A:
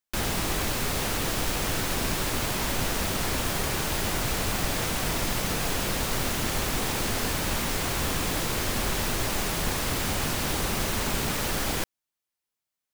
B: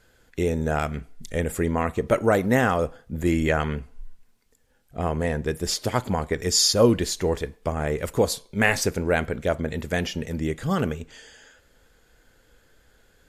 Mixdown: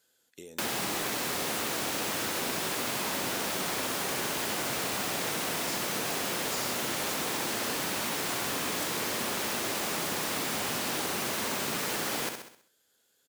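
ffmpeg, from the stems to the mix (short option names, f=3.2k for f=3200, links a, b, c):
-filter_complex "[0:a]adelay=450,volume=2dB,asplit=2[a][b];[b]volume=-7.5dB[c];[1:a]acompressor=threshold=-28dB:ratio=6,aexciter=amount=2.9:drive=6.1:freq=3k,volume=-15dB[d];[c]aecho=0:1:65|130|195|260|325|390:1|0.43|0.185|0.0795|0.0342|0.0147[e];[a][d][e]amix=inputs=3:normalize=0,highpass=220,acompressor=threshold=-31dB:ratio=2.5"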